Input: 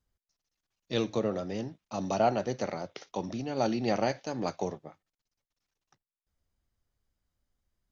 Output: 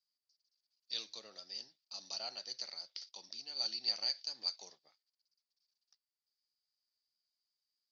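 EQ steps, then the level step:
resonant band-pass 4,700 Hz, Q 12
+13.5 dB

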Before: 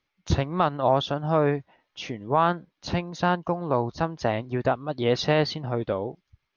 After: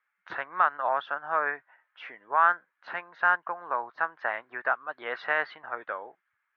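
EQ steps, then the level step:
high-pass filter 1,100 Hz 12 dB per octave
low-pass with resonance 1,600 Hz, resonance Q 3.6
high-frequency loss of the air 140 metres
0.0 dB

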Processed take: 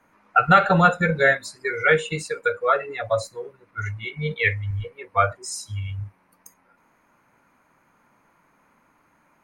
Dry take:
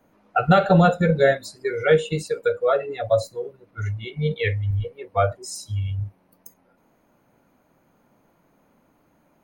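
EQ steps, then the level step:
low-pass filter 9,900 Hz 12 dB per octave
flat-topped bell 1,500 Hz +10 dB
high-shelf EQ 5,200 Hz +11 dB
−4.0 dB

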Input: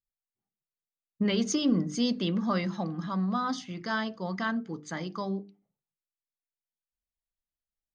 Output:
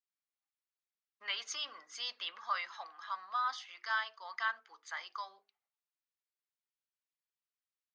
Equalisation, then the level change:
high-pass filter 1,000 Hz 24 dB per octave
dynamic equaliser 6,300 Hz, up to −3 dB, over −46 dBFS, Q 1.2
high-frequency loss of the air 91 metres
0.0 dB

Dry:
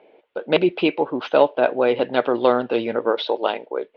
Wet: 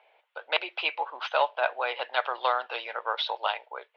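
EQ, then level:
high-pass filter 790 Hz 24 dB per octave
−1.5 dB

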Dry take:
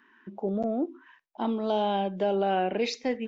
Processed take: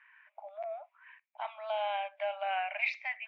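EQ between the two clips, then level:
linear-phase brick-wall high-pass 580 Hz
low-pass with resonance 2,300 Hz, resonance Q 7.2
−6.5 dB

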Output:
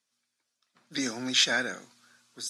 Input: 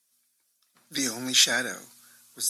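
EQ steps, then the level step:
high-frequency loss of the air 100 metres
parametric band 100 Hz −3.5 dB 0.54 octaves
0.0 dB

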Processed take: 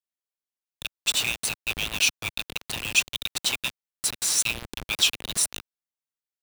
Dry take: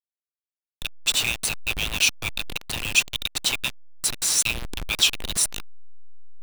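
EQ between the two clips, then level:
high-pass filter 93 Hz 6 dB per octave
−2.0 dB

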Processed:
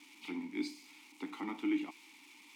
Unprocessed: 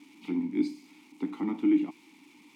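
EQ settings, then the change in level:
high-pass filter 1,400 Hz 6 dB per octave
+3.5 dB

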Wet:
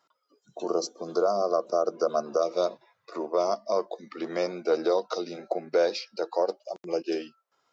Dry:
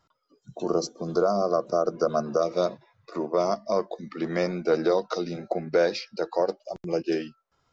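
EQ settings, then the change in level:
high-pass filter 360 Hz 12 dB per octave
dynamic equaliser 1,800 Hz, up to −7 dB, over −48 dBFS, Q 2
0.0 dB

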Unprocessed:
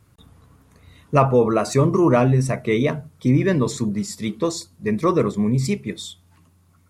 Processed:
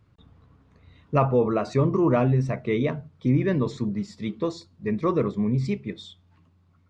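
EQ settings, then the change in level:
head-to-tape spacing loss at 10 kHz 34 dB
parametric band 3,800 Hz +5.5 dB 1.7 octaves
high-shelf EQ 5,000 Hz +8 dB
−3.5 dB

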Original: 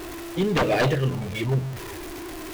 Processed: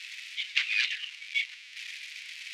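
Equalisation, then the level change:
elliptic high-pass filter 2,200 Hz, stop band 80 dB
low-pass filter 3,600 Hz 12 dB per octave
+7.0 dB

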